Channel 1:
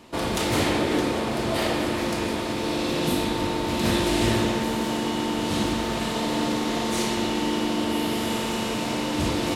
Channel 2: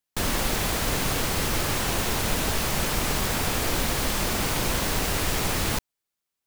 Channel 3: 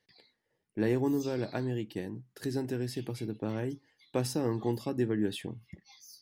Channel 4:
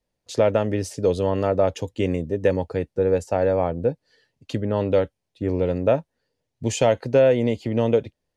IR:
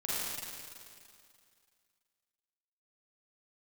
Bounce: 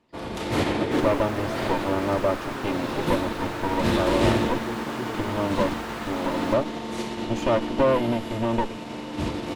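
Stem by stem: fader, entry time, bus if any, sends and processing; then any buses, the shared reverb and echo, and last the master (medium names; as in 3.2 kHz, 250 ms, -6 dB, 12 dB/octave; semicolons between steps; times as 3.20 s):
+2.5 dB, 0.00 s, no send, upward expansion 2.5:1, over -33 dBFS
-13.0 dB, 0.75 s, send -16.5 dB, steep high-pass 180 Hz; peaking EQ 1.2 kHz +10.5 dB 1.9 oct
-5.0 dB, 0.00 s, no send, none
-2.0 dB, 0.65 s, no send, comb filter that takes the minimum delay 3.3 ms; treble shelf 7.9 kHz -10.5 dB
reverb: on, RT60 2.3 s, pre-delay 37 ms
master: treble shelf 4.5 kHz -10.5 dB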